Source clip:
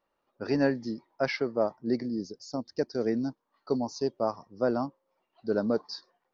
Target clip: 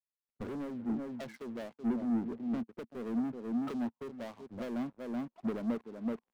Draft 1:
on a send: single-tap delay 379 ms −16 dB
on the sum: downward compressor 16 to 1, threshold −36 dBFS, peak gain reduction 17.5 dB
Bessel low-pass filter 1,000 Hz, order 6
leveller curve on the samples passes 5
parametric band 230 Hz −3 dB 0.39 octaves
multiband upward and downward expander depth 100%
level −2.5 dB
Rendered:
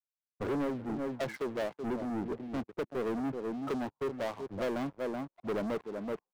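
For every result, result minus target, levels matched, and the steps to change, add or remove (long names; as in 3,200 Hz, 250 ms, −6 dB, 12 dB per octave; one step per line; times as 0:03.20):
downward compressor: peak gain reduction −7.5 dB; 250 Hz band −3.5 dB
change: downward compressor 16 to 1, threshold −44 dBFS, peak gain reduction 25 dB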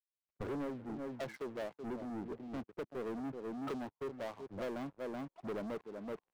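250 Hz band −3.0 dB
change: parametric band 230 Hz +8 dB 0.39 octaves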